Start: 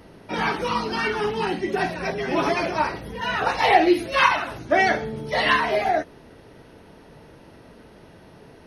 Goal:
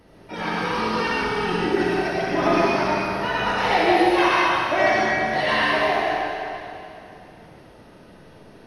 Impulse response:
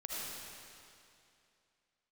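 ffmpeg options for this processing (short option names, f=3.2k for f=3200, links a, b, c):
-filter_complex "[0:a]asettb=1/sr,asplit=3[a][b][c];[a]atrim=end=0.784[d];[b]atrim=start=0.78:end=3.32,asetpts=PTS-STARTPTS,afade=t=in:d=0.004:c=qsin,afade=t=out:st=2.536:d=0.004:c=qsin,aphaser=in_gain=1:out_gain=1:delay=1.5:decay=0.43:speed=1.2:type=sinusoidal[e];[c]atrim=start=3.316[f];[d][e]acrossfade=d=0.004:c1=hsin:c2=qsin[g];[g][f]acrossfade=d=0.004:c1=qsin:c2=hsin[h];[1:a]atrim=start_sample=2205,asetrate=41895,aresample=44100[i];[h][i]afir=irnorm=-1:irlink=0,volume=-1dB"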